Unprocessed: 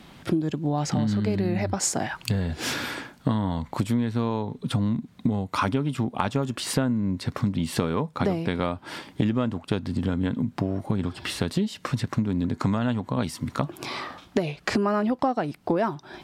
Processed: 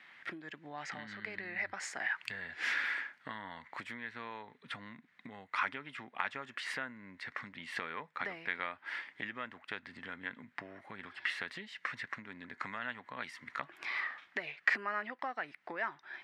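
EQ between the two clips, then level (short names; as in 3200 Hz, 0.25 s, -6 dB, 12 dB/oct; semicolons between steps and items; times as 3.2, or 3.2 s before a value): band-pass 1900 Hz, Q 4.6; +4.5 dB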